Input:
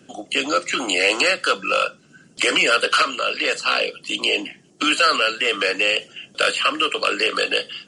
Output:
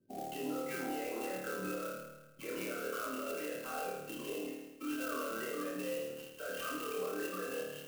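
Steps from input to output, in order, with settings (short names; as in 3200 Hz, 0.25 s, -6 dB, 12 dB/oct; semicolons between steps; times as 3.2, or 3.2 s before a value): gate -39 dBFS, range -15 dB; LPF 1200 Hz 6 dB/oct; tilt -2 dB/oct; limiter -25.5 dBFS, peak gain reduction 15.5 dB; loudest bins only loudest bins 32; resonator 390 Hz, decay 0.66 s, mix 90%; on a send: flutter echo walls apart 4.6 m, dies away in 1.1 s; on the sum: clock jitter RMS 0.049 ms; gain +7 dB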